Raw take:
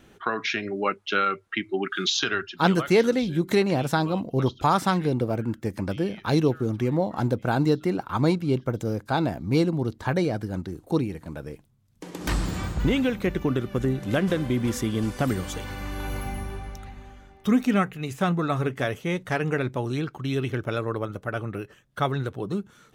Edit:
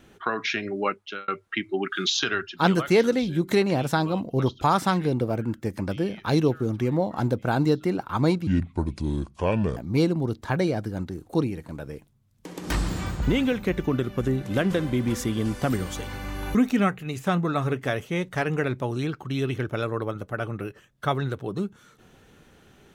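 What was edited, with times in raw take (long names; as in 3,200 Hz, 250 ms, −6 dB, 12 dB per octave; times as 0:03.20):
0:00.85–0:01.28: fade out
0:08.47–0:09.34: play speed 67%
0:16.12–0:17.49: remove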